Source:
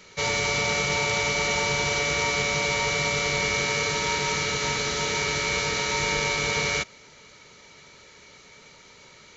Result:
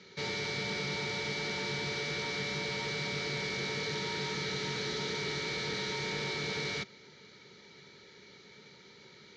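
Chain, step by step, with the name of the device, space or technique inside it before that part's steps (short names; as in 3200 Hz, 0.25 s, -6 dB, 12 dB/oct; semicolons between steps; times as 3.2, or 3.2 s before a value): guitar amplifier (tube stage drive 32 dB, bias 0.7; tone controls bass -2 dB, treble +8 dB; speaker cabinet 83–4200 Hz, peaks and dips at 140 Hz +5 dB, 200 Hz +7 dB, 380 Hz +7 dB, 630 Hz -8 dB, 1100 Hz -9 dB, 2700 Hz -8 dB)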